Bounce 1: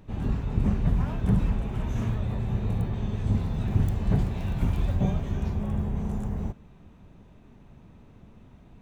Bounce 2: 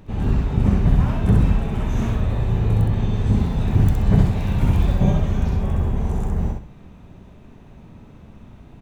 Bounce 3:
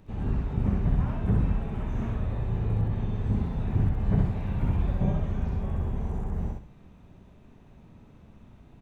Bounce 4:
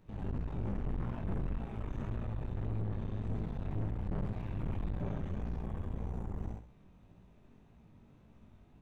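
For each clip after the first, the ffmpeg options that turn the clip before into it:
-af "aecho=1:1:65|130|195|260:0.708|0.177|0.0442|0.0111,volume=2"
-filter_complex "[0:a]acrossover=split=2600[s0][s1];[s1]acompressor=threshold=0.00158:ratio=4:attack=1:release=60[s2];[s0][s2]amix=inputs=2:normalize=0,volume=0.376"
-af "flanger=delay=17:depth=4.8:speed=1.8,aeval=exprs='(tanh(44.7*val(0)+0.8)-tanh(0.8))/44.7':c=same"

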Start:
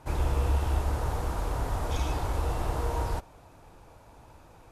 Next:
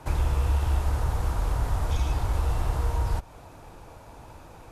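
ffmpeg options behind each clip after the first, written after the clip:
-filter_complex "[0:a]acrossover=split=160|820[s0][s1][s2];[s0]acompressor=threshold=0.0447:ratio=4[s3];[s1]acompressor=threshold=0.00398:ratio=4[s4];[s2]acompressor=threshold=0.00562:ratio=4[s5];[s3][s4][s5]amix=inputs=3:normalize=0,volume=2.11"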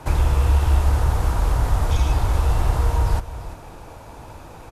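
-af "aecho=1:1:340:0.2,volume=2.11"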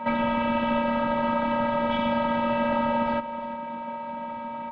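-af "aeval=exprs='val(0)+0.01*sin(2*PI*1100*n/s)':c=same,afftfilt=real='hypot(re,im)*cos(PI*b)':imag='0':win_size=512:overlap=0.75,highpass=f=160:t=q:w=0.5412,highpass=f=160:t=q:w=1.307,lowpass=f=3200:t=q:w=0.5176,lowpass=f=3200:t=q:w=0.7071,lowpass=f=3200:t=q:w=1.932,afreqshift=-110,volume=2.82"

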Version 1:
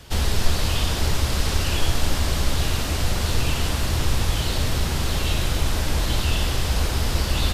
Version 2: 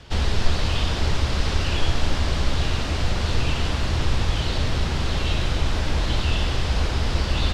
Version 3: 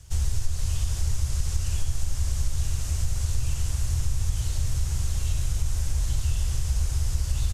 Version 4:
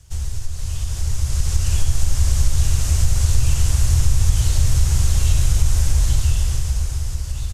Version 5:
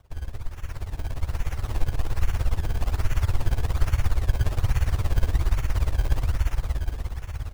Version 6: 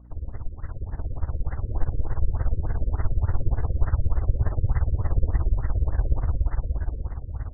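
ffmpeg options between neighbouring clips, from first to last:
-af "lowpass=4900"
-af "firequalizer=gain_entry='entry(110,0);entry(200,-18);entry(6400,15)':delay=0.05:min_phase=1,acompressor=threshold=0.112:ratio=3,equalizer=f=4200:w=0.75:g=-15"
-af "dynaudnorm=f=290:g=9:m=3.76"
-filter_complex "[0:a]asplit=2[s0][s1];[s1]aecho=0:1:210|420|630|840|1050|1260|1470:0.473|0.256|0.138|0.0745|0.0402|0.0217|0.0117[s2];[s0][s2]amix=inputs=2:normalize=0,acrusher=samples=19:mix=1:aa=0.000001:lfo=1:lforange=19:lforate=1.2,tremolo=f=17:d=0.82,volume=0.562"
-af "aeval=exprs='val(0)+0.00398*(sin(2*PI*60*n/s)+sin(2*PI*2*60*n/s)/2+sin(2*PI*3*60*n/s)/3+sin(2*PI*4*60*n/s)/4+sin(2*PI*5*60*n/s)/5)':c=same,afftfilt=real='re*lt(b*sr/1024,540*pow(2100/540,0.5+0.5*sin(2*PI*3.4*pts/sr)))':imag='im*lt(b*sr/1024,540*pow(2100/540,0.5+0.5*sin(2*PI*3.4*pts/sr)))':win_size=1024:overlap=0.75"

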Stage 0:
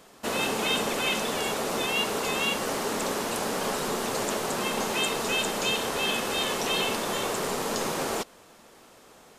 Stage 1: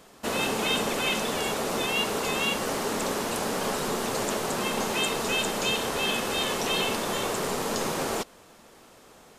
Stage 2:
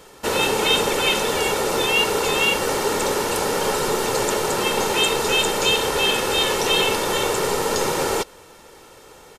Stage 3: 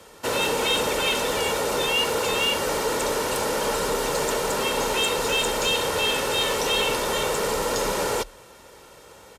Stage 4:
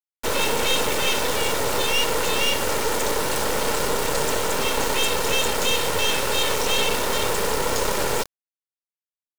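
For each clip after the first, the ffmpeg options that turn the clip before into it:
-af "lowshelf=f=160:g=4"
-af "aecho=1:1:2.2:0.5,volume=2"
-af "afreqshift=32,asoftclip=type=tanh:threshold=0.211,volume=0.794"
-af "acrusher=bits=3:dc=4:mix=0:aa=0.000001,volume=1.88"

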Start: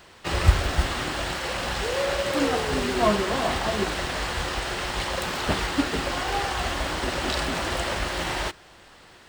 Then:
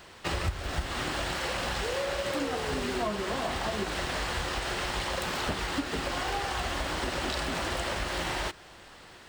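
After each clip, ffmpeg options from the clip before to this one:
-af "acompressor=threshold=0.0398:ratio=6"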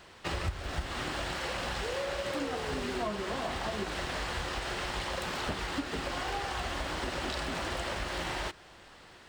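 -af "highshelf=f=9800:g=-6,volume=0.708"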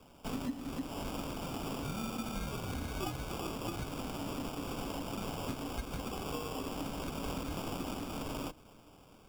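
-af "acrusher=samples=20:mix=1:aa=0.000001,afreqshift=-330,volume=0.631"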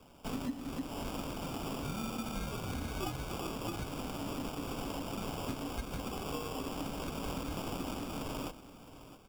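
-af "aecho=1:1:663:0.178"

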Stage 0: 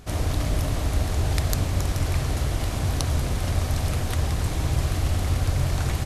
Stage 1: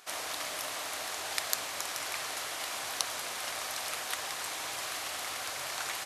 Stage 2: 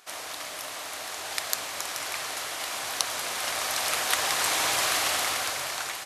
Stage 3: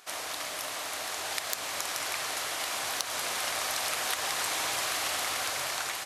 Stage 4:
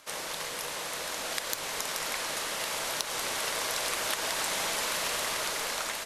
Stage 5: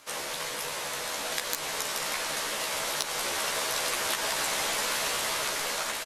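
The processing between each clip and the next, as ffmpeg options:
-af "highpass=970"
-af "dynaudnorm=f=510:g=5:m=5.31"
-af "aeval=exprs='0.891*sin(PI/2*1.58*val(0)/0.891)':c=same,acompressor=threshold=0.0891:ratio=6,volume=0.447"
-af "afreqshift=-130"
-filter_complex "[0:a]asplit=2[s0][s1];[s1]adelay=14,volume=0.708[s2];[s0][s2]amix=inputs=2:normalize=0"

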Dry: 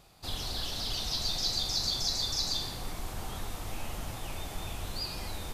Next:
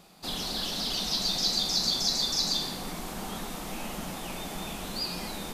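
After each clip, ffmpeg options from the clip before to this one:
-af "lowshelf=f=140:t=q:w=3:g=-9,volume=1.58"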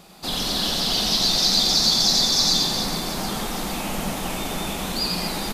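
-filter_complex "[0:a]asplit=2[s0][s1];[s1]aecho=0:1:90|225|427.5|731.2|1187:0.631|0.398|0.251|0.158|0.1[s2];[s0][s2]amix=inputs=2:normalize=0,acontrast=78"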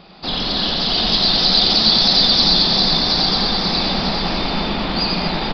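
-af "aecho=1:1:720|1260|1665|1969|2197:0.631|0.398|0.251|0.158|0.1,aresample=11025,aresample=44100,volume=1.68"

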